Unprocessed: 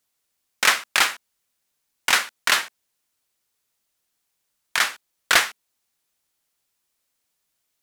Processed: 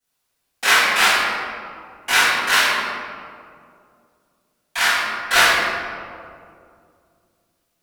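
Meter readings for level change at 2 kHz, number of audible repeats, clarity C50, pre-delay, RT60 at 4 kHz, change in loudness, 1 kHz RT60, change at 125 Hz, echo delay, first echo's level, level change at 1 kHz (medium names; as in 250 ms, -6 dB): +6.0 dB, no echo, -4.0 dB, 3 ms, 1.1 s, +4.0 dB, 2.1 s, no reading, no echo, no echo, +7.0 dB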